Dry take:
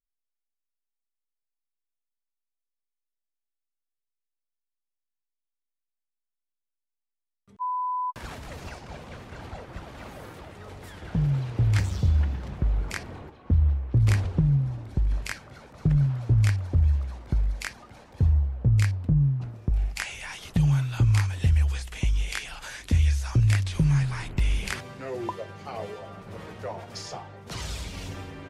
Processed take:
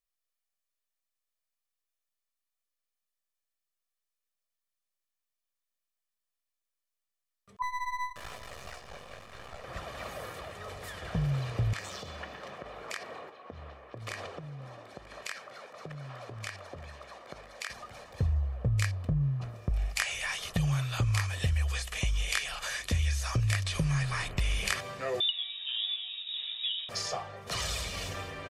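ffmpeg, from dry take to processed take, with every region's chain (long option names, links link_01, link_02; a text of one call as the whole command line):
ffmpeg -i in.wav -filter_complex "[0:a]asettb=1/sr,asplit=3[link_01][link_02][link_03];[link_01]atrim=end=7.624[link_04];[link_02]atrim=start=7.62:end=9.64,asetpts=PTS-STARTPTS,afade=type=in:duration=0.004:curve=qsin,afade=type=out:start_time=2.016:duration=0.004:curve=qsin,flanger=delay=15:depth=5.5:speed=1,aeval=exprs='max(val(0),0)':channel_layout=same,aecho=1:1:405:0.0944,atrim=end_sample=89082[link_05];[link_03]atrim=start=9.636[link_06];[link_04][link_05]acrossfade=duration=0.004:curve1=hsin:curve2=qsin[link_07];[link_07][link_06]acrossfade=duration=0.004:curve1=qsin:curve2=hsin,asettb=1/sr,asplit=3[link_08][link_09][link_10];[link_08]atrim=end=11.734[link_11];[link_09]atrim=start=11.73:end=17.7,asetpts=PTS-STARTPTS,afade=type=in:duration=0.004:curve=qsin,afade=type=out:start_time=5.966:duration=0.004:curve=qsin,highpass=300,highshelf=frequency=6300:gain=-8,acompressor=threshold=-35dB:ratio=10:attack=3.2:release=140:knee=1:detection=peak[link_12];[link_10]atrim=start=17.696[link_13];[link_11][link_12]acrossfade=duration=0.004:curve1=hsin:curve2=qsin[link_14];[link_14][link_13]acrossfade=duration=0.004:curve1=qsin:curve2=hsin,asettb=1/sr,asplit=3[link_15][link_16][link_17];[link_15]atrim=end=25.204[link_18];[link_16]atrim=start=25.2:end=26.89,asetpts=PTS-STARTPTS,afade=type=in:duration=0.004:curve=qsin,afade=type=out:start_time=1.686:duration=0.004:curve=qsin,equalizer=frequency=2500:width_type=o:width=1.5:gain=-14.5,lowpass=frequency=3300:width_type=q:width=0.5098,lowpass=frequency=3300:width_type=q:width=0.6013,lowpass=frequency=3300:width_type=q:width=0.9,lowpass=frequency=3300:width_type=q:width=2.563,afreqshift=-3900[link_19];[link_17]atrim=start=26.886[link_20];[link_18][link_19]acrossfade=duration=0.004:curve1=hsin:curve2=qsin[link_21];[link_21][link_20]acrossfade=duration=0.004:curve1=qsin:curve2=hsin,lowshelf=frequency=340:gain=-10.5,aecho=1:1:1.7:0.47,acompressor=threshold=-29dB:ratio=3,volume=3.5dB" out.wav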